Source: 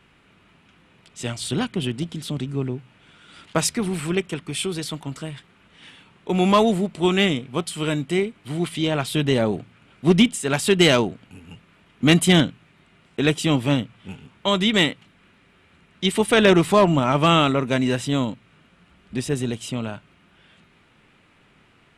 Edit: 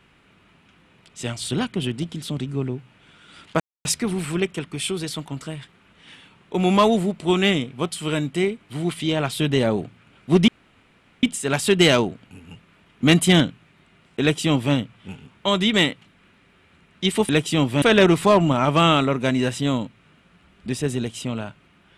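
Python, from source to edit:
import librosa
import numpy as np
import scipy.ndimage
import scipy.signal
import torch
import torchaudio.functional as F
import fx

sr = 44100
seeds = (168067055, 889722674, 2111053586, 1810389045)

y = fx.edit(x, sr, fx.insert_silence(at_s=3.6, length_s=0.25),
    fx.insert_room_tone(at_s=10.23, length_s=0.75),
    fx.duplicate(start_s=13.21, length_s=0.53, to_s=16.29), tone=tone)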